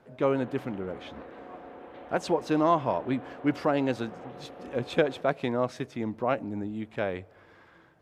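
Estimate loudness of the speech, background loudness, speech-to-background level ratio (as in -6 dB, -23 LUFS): -29.5 LUFS, -45.5 LUFS, 16.0 dB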